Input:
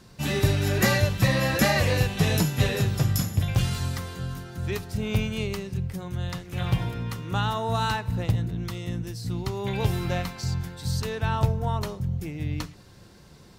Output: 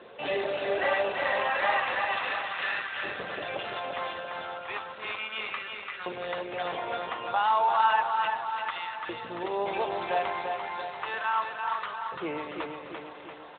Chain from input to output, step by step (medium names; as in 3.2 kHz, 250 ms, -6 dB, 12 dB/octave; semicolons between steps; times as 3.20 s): in parallel at -2.5 dB: compressor with a negative ratio -34 dBFS, ratio -1; on the sum: bit crusher 8-bit; overload inside the chain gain 20 dB; LFO high-pass saw up 0.33 Hz 480–1500 Hz; feedback delay 342 ms, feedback 57%, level -5 dB; trim -1.5 dB; AMR-NB 12.2 kbps 8 kHz